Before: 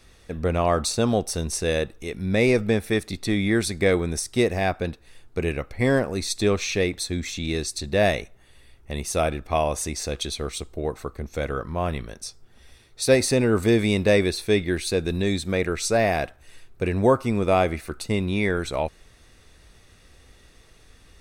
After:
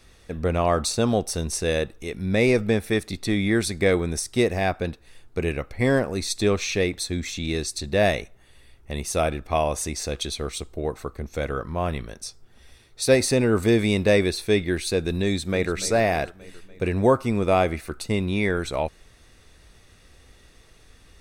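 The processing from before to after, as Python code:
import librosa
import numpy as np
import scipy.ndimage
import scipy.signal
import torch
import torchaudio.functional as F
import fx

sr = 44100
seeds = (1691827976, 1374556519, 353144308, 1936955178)

y = fx.echo_throw(x, sr, start_s=15.23, length_s=0.5, ms=290, feedback_pct=60, wet_db=-14.5)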